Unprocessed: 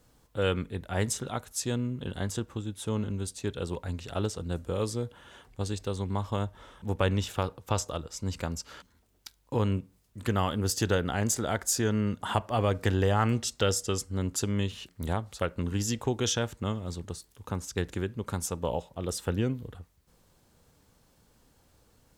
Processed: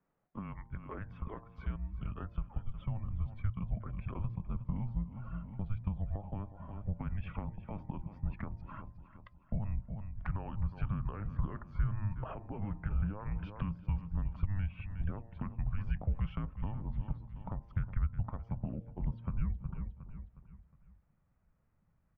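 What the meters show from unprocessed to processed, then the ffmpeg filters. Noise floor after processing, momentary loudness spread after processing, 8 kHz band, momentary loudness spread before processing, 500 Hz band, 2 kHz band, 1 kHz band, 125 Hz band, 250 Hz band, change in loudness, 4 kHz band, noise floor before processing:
-73 dBFS, 9 LU, under -40 dB, 11 LU, -21.0 dB, -15.5 dB, -14.0 dB, -5.0 dB, -10.0 dB, -8.5 dB, under -25 dB, -65 dBFS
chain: -filter_complex "[0:a]alimiter=limit=-21.5dB:level=0:latency=1:release=50,lowshelf=f=230:g=5.5,afftdn=nr=15:nf=-48,asplit=2[a][b];[b]aecho=0:1:362|724|1086|1448:0.158|0.0666|0.028|0.0117[c];[a][c]amix=inputs=2:normalize=0,highpass=f=400:t=q:w=0.5412,highpass=f=400:t=q:w=1.307,lowpass=f=2.4k:t=q:w=0.5176,lowpass=f=2.4k:t=q:w=0.7071,lowpass=f=2.4k:t=q:w=1.932,afreqshift=-310,bandreject=f=114.9:t=h:w=4,bandreject=f=229.8:t=h:w=4,bandreject=f=344.7:t=h:w=4,bandreject=f=459.6:t=h:w=4,bandreject=f=574.5:t=h:w=4,bandreject=f=689.4:t=h:w=4,bandreject=f=804.3:t=h:w=4,bandreject=f=919.2:t=h:w=4,bandreject=f=1.0341k:t=h:w=4,acompressor=threshold=-46dB:ratio=4,asubboost=boost=7:cutoff=130,volume=3.5dB"

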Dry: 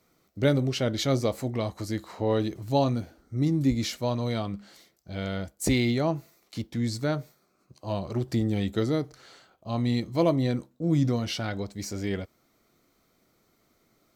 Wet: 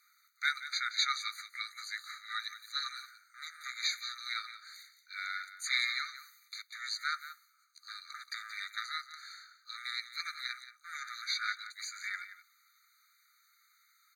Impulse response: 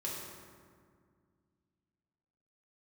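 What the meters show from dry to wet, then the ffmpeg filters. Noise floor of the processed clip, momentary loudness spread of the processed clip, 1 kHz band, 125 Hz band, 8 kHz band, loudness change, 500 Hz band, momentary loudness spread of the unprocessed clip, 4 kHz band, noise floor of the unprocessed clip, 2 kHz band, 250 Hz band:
-70 dBFS, 16 LU, -6.0 dB, under -40 dB, -4.0 dB, -9.0 dB, under -40 dB, 11 LU, +1.0 dB, -69 dBFS, +4.0 dB, under -40 dB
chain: -filter_complex "[0:a]asubboost=boost=11.5:cutoff=140,aeval=exprs='clip(val(0),-1,0.15)':c=same,acrossover=split=6300[a][b];[b]acompressor=threshold=-58dB:ratio=4:attack=1:release=60[c];[a][c]amix=inputs=2:normalize=0,asplit=2[d][e];[e]aecho=0:1:177:0.224[f];[d][f]amix=inputs=2:normalize=0,afftfilt=real='re*eq(mod(floor(b*sr/1024/1200),2),1)':imag='im*eq(mod(floor(b*sr/1024/1200),2),1)':win_size=1024:overlap=0.75,volume=5dB"

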